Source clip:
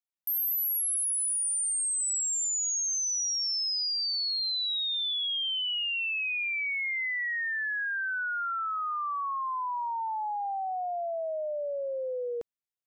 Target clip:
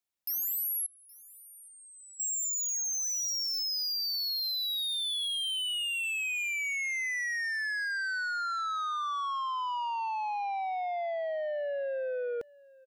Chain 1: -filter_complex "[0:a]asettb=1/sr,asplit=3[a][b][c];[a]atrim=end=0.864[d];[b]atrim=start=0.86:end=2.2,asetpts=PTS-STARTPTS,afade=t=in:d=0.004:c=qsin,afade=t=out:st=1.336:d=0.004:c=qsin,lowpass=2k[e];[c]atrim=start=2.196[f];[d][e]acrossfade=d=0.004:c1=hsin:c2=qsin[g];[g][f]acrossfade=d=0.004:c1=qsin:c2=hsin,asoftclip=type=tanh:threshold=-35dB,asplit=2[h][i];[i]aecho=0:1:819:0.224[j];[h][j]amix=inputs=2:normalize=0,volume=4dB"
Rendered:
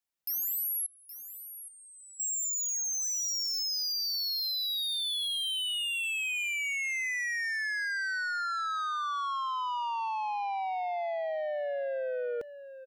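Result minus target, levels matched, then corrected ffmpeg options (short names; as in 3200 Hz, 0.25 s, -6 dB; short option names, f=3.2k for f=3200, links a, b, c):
echo-to-direct +10.5 dB
-filter_complex "[0:a]asettb=1/sr,asplit=3[a][b][c];[a]atrim=end=0.864[d];[b]atrim=start=0.86:end=2.2,asetpts=PTS-STARTPTS,afade=t=in:d=0.004:c=qsin,afade=t=out:st=1.336:d=0.004:c=qsin,lowpass=2k[e];[c]atrim=start=2.196[f];[d][e]acrossfade=d=0.004:c1=hsin:c2=qsin[g];[g][f]acrossfade=d=0.004:c1=qsin:c2=hsin,asoftclip=type=tanh:threshold=-35dB,asplit=2[h][i];[i]aecho=0:1:819:0.0668[j];[h][j]amix=inputs=2:normalize=0,volume=4dB"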